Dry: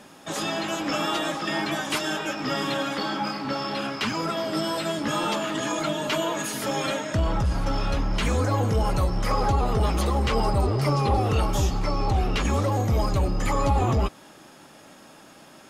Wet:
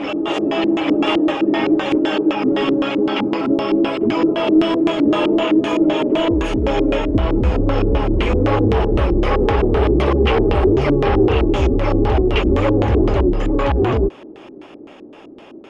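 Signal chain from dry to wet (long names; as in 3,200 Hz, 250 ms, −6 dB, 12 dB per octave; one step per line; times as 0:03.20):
graphic EQ with 15 bands 160 Hz −9 dB, 400 Hz +9 dB, 1,600 Hz −7 dB, 4,000 Hz −11 dB
gain into a clipping stage and back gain 20.5 dB
on a send: backwards echo 847 ms −5 dB
on the sum: auto-filter low-pass square 3.9 Hz 330–3,000 Hz
level +7 dB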